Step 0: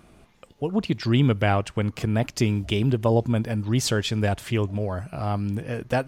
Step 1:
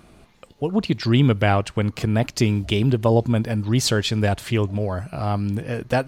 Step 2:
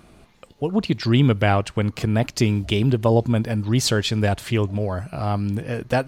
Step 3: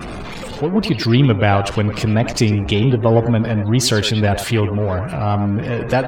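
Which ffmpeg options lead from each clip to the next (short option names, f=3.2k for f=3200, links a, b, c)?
-af "equalizer=f=4.2k:w=5.3:g=4.5,volume=3dB"
-af anull
-filter_complex "[0:a]aeval=exprs='val(0)+0.5*0.0562*sgn(val(0))':c=same,asplit=2[a][b];[b]adelay=100,highpass=300,lowpass=3.4k,asoftclip=type=hard:threshold=-14.5dB,volume=-7dB[c];[a][c]amix=inputs=2:normalize=0,afftdn=nr=33:nf=-38,volume=2.5dB"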